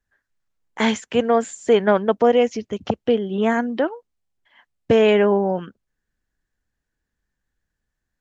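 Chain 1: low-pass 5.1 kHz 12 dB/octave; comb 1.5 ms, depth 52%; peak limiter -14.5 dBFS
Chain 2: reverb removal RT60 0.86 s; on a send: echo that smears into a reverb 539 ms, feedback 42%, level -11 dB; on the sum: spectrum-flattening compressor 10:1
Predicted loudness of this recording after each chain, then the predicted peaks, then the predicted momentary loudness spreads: -24.5 LUFS, -25.5 LUFS; -14.5 dBFS, -4.0 dBFS; 8 LU, 12 LU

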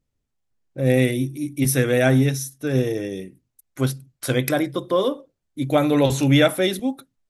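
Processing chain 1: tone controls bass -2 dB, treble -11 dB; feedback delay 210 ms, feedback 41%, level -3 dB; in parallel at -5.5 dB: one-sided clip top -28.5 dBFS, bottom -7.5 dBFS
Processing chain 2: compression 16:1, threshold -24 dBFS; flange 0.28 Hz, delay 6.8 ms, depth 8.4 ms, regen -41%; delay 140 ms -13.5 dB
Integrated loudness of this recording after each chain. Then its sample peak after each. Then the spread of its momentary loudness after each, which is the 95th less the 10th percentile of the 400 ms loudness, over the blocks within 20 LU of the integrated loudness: -18.0 LUFS, -33.5 LUFS; -2.5 dBFS, -16.0 dBFS; 11 LU, 6 LU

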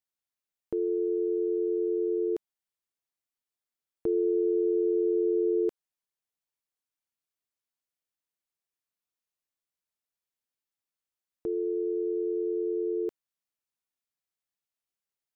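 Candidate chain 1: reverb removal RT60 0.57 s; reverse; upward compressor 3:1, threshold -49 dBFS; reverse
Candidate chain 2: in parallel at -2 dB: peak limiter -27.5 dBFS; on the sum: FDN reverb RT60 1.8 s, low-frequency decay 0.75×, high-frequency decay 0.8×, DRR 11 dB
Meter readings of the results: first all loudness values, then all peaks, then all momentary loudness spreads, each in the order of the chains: -31.0 LUFS, -25.5 LUFS; -19.5 dBFS, -16.0 dBFS; 7 LU, 12 LU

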